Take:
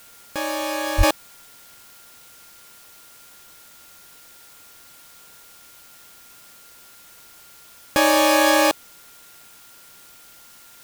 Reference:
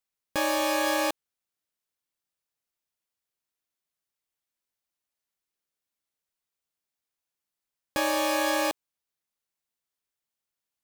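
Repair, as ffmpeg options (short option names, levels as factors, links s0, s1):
-filter_complex "[0:a]bandreject=f=1400:w=30,asplit=3[s0][s1][s2];[s0]afade=t=out:st=0.97:d=0.02[s3];[s1]highpass=f=140:w=0.5412,highpass=f=140:w=1.3066,afade=t=in:st=0.97:d=0.02,afade=t=out:st=1.09:d=0.02[s4];[s2]afade=t=in:st=1.09:d=0.02[s5];[s3][s4][s5]amix=inputs=3:normalize=0,afwtdn=0.004,asetnsamples=n=441:p=0,asendcmd='1.03 volume volume -9.5dB',volume=1"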